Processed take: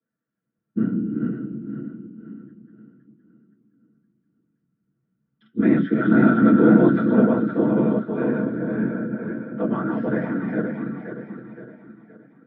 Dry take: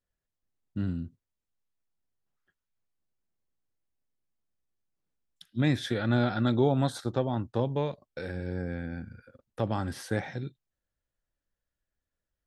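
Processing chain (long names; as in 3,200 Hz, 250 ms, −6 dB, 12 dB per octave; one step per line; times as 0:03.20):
feedback delay that plays each chunk backwards 259 ms, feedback 65%, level −2 dB
random phases in short frames
noise that follows the level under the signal 31 dB
loudspeaker in its box 100–2,900 Hz, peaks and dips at 110 Hz −7 dB, 300 Hz +3 dB, 830 Hz −10 dB, 1,400 Hz +9 dB
convolution reverb RT60 0.15 s, pre-delay 3 ms, DRR −4 dB
level −13.5 dB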